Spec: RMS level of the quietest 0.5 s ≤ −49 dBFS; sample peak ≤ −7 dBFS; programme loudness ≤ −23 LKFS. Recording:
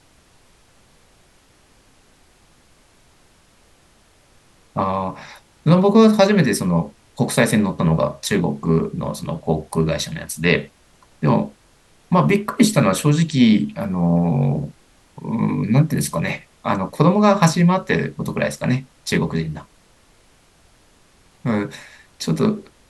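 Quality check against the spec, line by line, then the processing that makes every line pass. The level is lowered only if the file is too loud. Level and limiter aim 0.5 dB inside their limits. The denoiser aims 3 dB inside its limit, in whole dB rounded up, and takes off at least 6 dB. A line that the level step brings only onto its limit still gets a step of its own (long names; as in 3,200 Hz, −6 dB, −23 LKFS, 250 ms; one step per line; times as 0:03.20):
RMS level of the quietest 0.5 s −54 dBFS: in spec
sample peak −2.0 dBFS: out of spec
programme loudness −19.0 LKFS: out of spec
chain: level −4.5 dB
brickwall limiter −7.5 dBFS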